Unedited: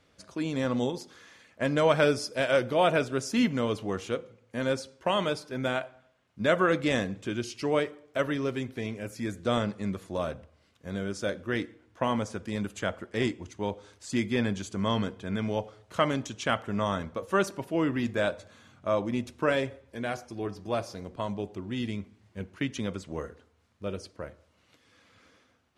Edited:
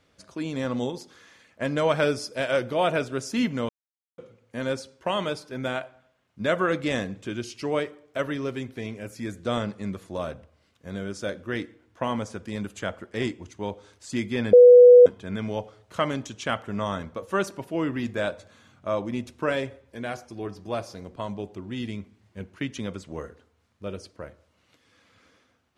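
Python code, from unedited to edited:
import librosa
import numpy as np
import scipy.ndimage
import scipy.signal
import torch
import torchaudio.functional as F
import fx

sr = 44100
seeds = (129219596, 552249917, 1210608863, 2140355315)

y = fx.edit(x, sr, fx.silence(start_s=3.69, length_s=0.49),
    fx.bleep(start_s=14.53, length_s=0.53, hz=491.0, db=-7.0), tone=tone)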